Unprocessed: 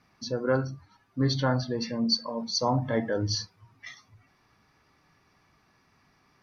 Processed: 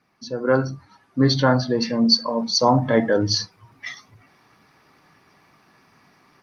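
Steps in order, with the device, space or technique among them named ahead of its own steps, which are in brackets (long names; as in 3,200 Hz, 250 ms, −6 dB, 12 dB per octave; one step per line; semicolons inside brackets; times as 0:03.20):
video call (high-pass filter 140 Hz 12 dB per octave; automatic gain control gain up to 11 dB; Opus 32 kbit/s 48,000 Hz)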